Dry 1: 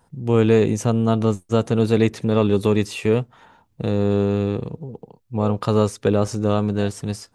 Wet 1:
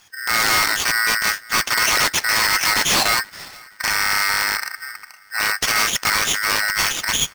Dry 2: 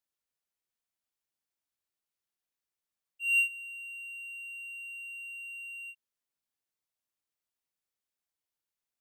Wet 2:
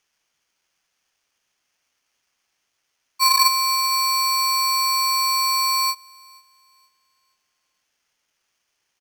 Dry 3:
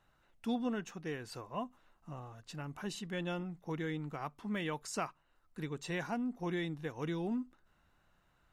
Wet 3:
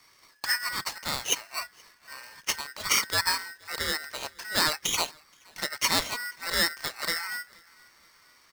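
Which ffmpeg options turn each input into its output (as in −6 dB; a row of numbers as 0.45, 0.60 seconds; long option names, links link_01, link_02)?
-filter_complex "[0:a]acrossover=split=110|4200[link_01][link_02][link_03];[link_01]alimiter=level_in=7.5dB:limit=-24dB:level=0:latency=1,volume=-7.5dB[link_04];[link_02]asoftclip=type=hard:threshold=-14dB[link_05];[link_04][link_05][link_03]amix=inputs=3:normalize=0,aexciter=amount=10.5:drive=8.1:freq=2100,aresample=11025,aeval=exprs='0.266*(abs(mod(val(0)/0.266+3,4)-2)-1)':channel_layout=same,aresample=44100,asplit=2[link_06][link_07];[link_07]adelay=475,lowpass=frequency=1800:poles=1,volume=-23.5dB,asplit=2[link_08][link_09];[link_09]adelay=475,lowpass=frequency=1800:poles=1,volume=0.54,asplit=2[link_10][link_11];[link_11]adelay=475,lowpass=frequency=1800:poles=1,volume=0.54,asplit=2[link_12][link_13];[link_13]adelay=475,lowpass=frequency=1800:poles=1,volume=0.54[link_14];[link_06][link_08][link_10][link_12][link_14]amix=inputs=5:normalize=0,aeval=exprs='val(0)*sgn(sin(2*PI*1700*n/s))':channel_layout=same"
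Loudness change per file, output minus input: +3.0, +15.5, +11.5 LU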